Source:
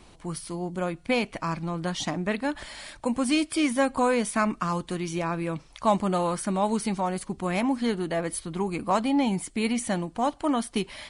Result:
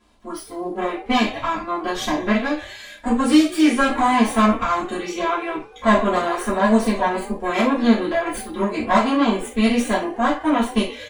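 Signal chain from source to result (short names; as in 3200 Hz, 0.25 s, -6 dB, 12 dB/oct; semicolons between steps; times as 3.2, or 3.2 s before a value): minimum comb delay 3 ms; high shelf 6100 Hz -7 dB; frequency-shifting echo 0.109 s, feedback 46%, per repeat +48 Hz, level -15 dB; spectral noise reduction 11 dB; reverb, pre-delay 3 ms, DRR -7.5 dB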